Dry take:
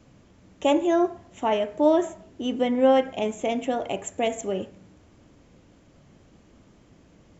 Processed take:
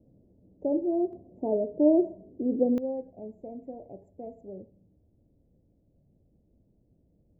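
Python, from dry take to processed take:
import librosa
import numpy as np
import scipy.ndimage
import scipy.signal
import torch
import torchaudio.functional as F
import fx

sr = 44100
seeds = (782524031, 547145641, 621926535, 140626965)

y = scipy.signal.sosfilt(scipy.signal.cheby2(4, 40, 1200.0, 'lowpass', fs=sr, output='sos'), x)
y = fx.peak_eq(y, sr, hz=370.0, db=fx.steps((0.0, 2.5), (1.13, 8.5), (2.78, -7.0)), octaves=2.6)
y = y * 10.0 ** (-7.0 / 20.0)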